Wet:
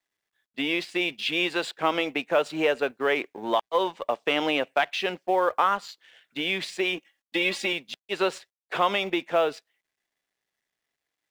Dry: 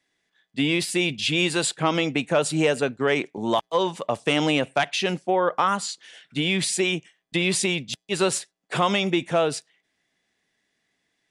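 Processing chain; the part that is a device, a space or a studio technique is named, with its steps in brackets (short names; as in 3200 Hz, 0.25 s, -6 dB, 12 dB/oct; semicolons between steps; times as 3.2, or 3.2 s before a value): phone line with mismatched companding (BPF 370–3400 Hz; G.711 law mismatch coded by A); 6.97–7.73 comb 3.6 ms, depth 78%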